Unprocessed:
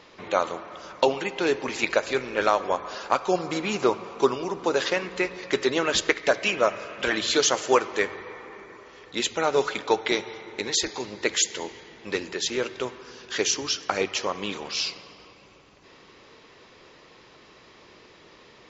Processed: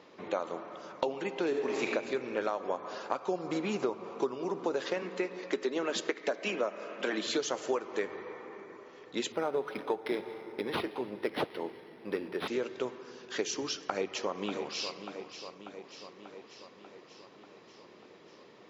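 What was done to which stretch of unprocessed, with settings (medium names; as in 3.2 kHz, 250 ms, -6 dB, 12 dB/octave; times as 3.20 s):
1.48–1.92 s: reverb throw, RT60 1.4 s, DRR -0.5 dB
5.02–7.27 s: steep high-pass 170 Hz
9.32–12.48 s: decimation joined by straight lines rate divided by 6×
13.78–14.95 s: echo throw 590 ms, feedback 65%, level -11.5 dB
whole clip: high-pass 180 Hz 12 dB/octave; tilt shelf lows +5 dB; compression 6:1, threshold -23 dBFS; trim -5 dB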